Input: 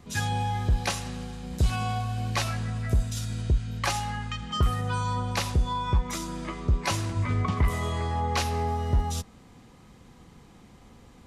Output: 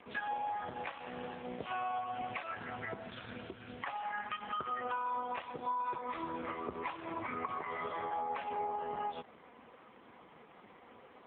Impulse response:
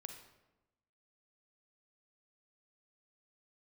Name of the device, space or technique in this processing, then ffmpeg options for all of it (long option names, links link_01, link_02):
voicemail: -af "highpass=430,lowpass=2600,acompressor=threshold=-39dB:ratio=8,volume=6dB" -ar 8000 -c:a libopencore_amrnb -b:a 4750